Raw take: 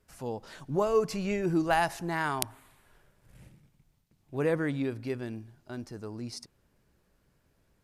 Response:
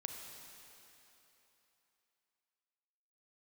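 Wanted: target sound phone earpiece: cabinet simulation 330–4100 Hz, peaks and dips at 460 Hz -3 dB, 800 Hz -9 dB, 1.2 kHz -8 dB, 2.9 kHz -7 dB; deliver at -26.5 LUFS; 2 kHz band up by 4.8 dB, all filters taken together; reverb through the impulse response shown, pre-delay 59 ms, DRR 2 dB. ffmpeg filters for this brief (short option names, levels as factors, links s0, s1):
-filter_complex "[0:a]equalizer=f=2000:t=o:g=8.5,asplit=2[s0][s1];[1:a]atrim=start_sample=2205,adelay=59[s2];[s1][s2]afir=irnorm=-1:irlink=0,volume=0.944[s3];[s0][s3]amix=inputs=2:normalize=0,highpass=330,equalizer=f=460:t=q:w=4:g=-3,equalizer=f=800:t=q:w=4:g=-9,equalizer=f=1200:t=q:w=4:g=-8,equalizer=f=2900:t=q:w=4:g=-7,lowpass=f=4100:w=0.5412,lowpass=f=4100:w=1.3066,volume=1.78"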